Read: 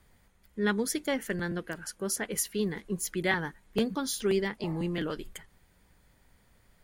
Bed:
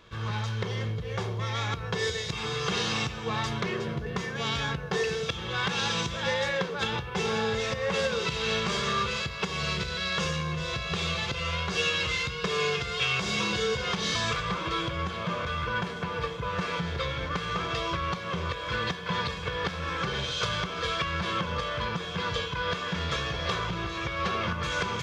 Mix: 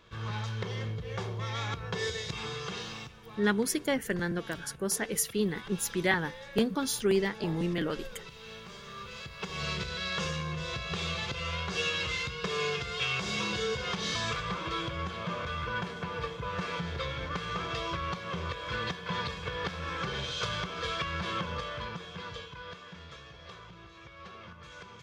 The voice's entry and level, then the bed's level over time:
2.80 s, +1.0 dB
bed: 0:02.39 −4 dB
0:03.29 −18 dB
0:08.88 −18 dB
0:09.63 −4 dB
0:21.45 −4 dB
0:23.18 −18.5 dB

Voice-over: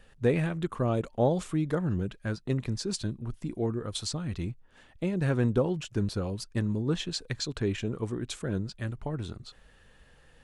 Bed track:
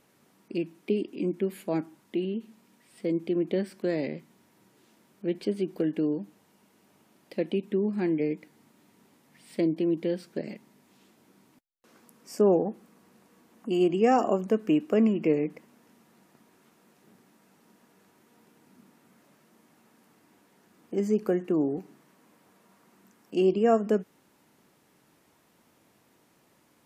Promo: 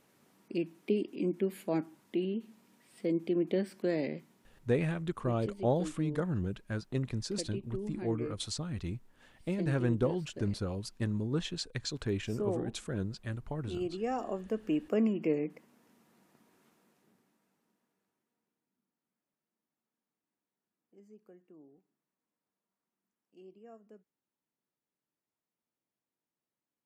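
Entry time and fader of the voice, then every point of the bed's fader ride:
4.45 s, −4.0 dB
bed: 0:04.20 −3 dB
0:04.87 −12.5 dB
0:14.18 −12.5 dB
0:14.89 −6 dB
0:16.68 −6 dB
0:18.82 −31 dB

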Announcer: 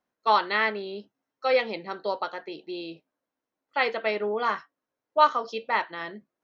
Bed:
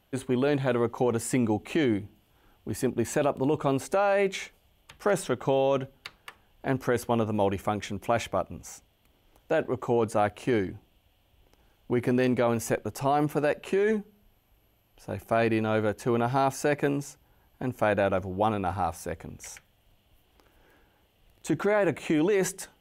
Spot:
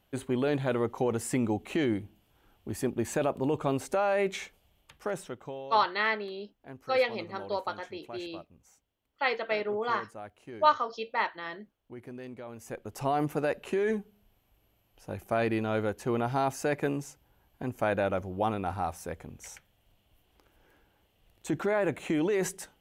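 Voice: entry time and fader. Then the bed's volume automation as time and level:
5.45 s, −3.5 dB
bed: 0:04.76 −3 dB
0:05.74 −18.5 dB
0:12.52 −18.5 dB
0:13.02 −3.5 dB

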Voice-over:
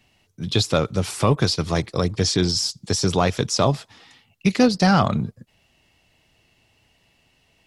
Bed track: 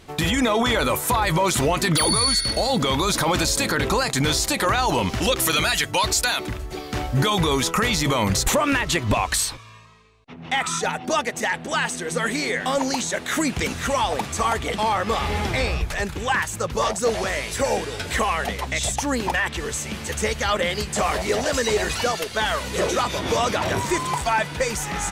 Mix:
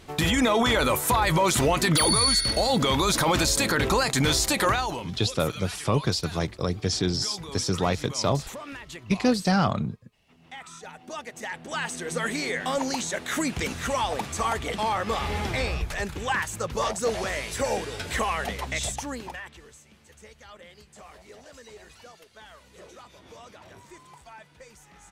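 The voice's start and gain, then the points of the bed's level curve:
4.65 s, −5.5 dB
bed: 0:04.69 −1.5 dB
0:05.16 −19 dB
0:10.80 −19 dB
0:12.03 −4.5 dB
0:18.81 −4.5 dB
0:19.85 −25.5 dB

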